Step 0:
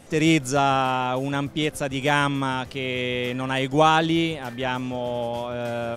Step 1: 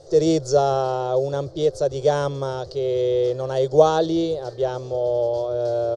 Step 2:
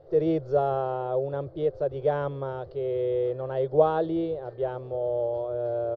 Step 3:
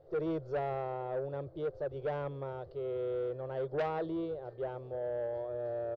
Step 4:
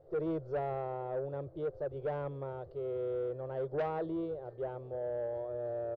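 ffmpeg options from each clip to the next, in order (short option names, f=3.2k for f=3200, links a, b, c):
-af "firequalizer=gain_entry='entry(150,0);entry(220,-27);entry(360,8);entry(530,10);entry(880,-6);entry(1300,-8);entry(2400,-23);entry(4400,8);entry(12000,-26)':delay=0.05:min_phase=1"
-af "lowpass=f=2.6k:w=0.5412,lowpass=f=2.6k:w=1.3066,volume=-6dB"
-af "asoftclip=type=tanh:threshold=-21dB,volume=-7dB"
-af "highshelf=f=2.3k:g=-9"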